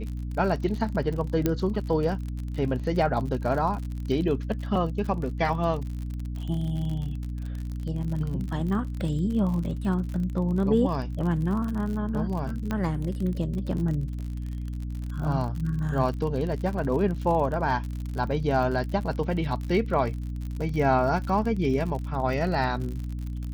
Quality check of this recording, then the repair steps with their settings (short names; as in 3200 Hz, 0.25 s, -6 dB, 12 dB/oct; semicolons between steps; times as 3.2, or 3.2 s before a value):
crackle 51/s -32 dBFS
hum 60 Hz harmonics 5 -32 dBFS
1.46 pop -10 dBFS
12.71 pop -16 dBFS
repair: de-click; de-hum 60 Hz, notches 5